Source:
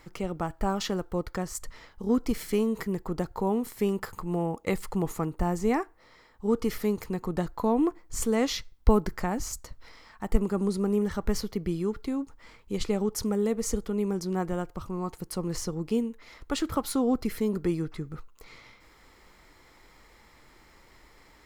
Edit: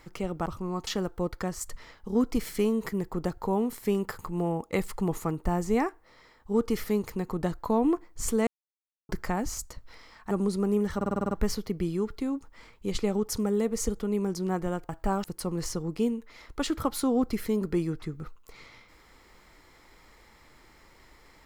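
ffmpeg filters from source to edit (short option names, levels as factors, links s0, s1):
-filter_complex "[0:a]asplit=15[s0][s1][s2][s3][s4][s5][s6][s7][s8][s9][s10][s11][s12][s13][s14];[s0]atrim=end=0.462[s15];[s1]atrim=start=14.748:end=15.162[s16];[s2]atrim=start=0.808:end=8.41,asetpts=PTS-STARTPTS,afade=t=out:st=7.598:d=0.004:c=hsin[s17];[s3]atrim=start=8.41:end=9.03,asetpts=PTS-STARTPTS,volume=0[s18];[s4]atrim=start=9.03:end=10.252,asetpts=PTS-STARTPTS,afade=t=in:d=0.004:c=hsin[s19];[s5]atrim=start=10.518:end=11.222[s20];[s6]atrim=start=11.168:end=11.222[s21];[s7]atrim=start=11.168:end=11.222[s22];[s8]atrim=start=11.168:end=11.222[s23];[s9]atrim=start=11.168:end=11.222[s24];[s10]atrim=start=11.168:end=11.222[s25];[s11]atrim=start=11.168:end=11.222[s26];[s12]atrim=start=11.168:end=14.752[s27];[s13]atrim=start=0.458:end=0.812[s28];[s14]atrim=start=15.158[s29];[s15][s16]acrossfade=d=0.004:c1=hsin:c2=hsin[s30];[s17][s18][s19]concat=n=3:v=0:a=1[s31];[s30][s31]acrossfade=d=0.004:c1=hsin:c2=hsin[s32];[s32][s20]acrossfade=d=0.004:c1=hsin:c2=hsin[s33];[s33][s21]acrossfade=d=0.004:c1=hsin:c2=hsin[s34];[s34][s22]acrossfade=d=0.004:c1=hsin:c2=hsin[s35];[s35][s23]acrossfade=d=0.004:c1=hsin:c2=hsin[s36];[s36][s24]acrossfade=d=0.004:c1=hsin:c2=hsin[s37];[s37][s25]acrossfade=d=0.004:c1=hsin:c2=hsin[s38];[s38][s26]acrossfade=d=0.004:c1=hsin:c2=hsin[s39];[s39][s27]acrossfade=d=0.004:c1=hsin:c2=hsin[s40];[s40][s28]acrossfade=d=0.004:c1=hsin:c2=hsin[s41];[s41][s29]acrossfade=d=0.004:c1=hsin:c2=hsin"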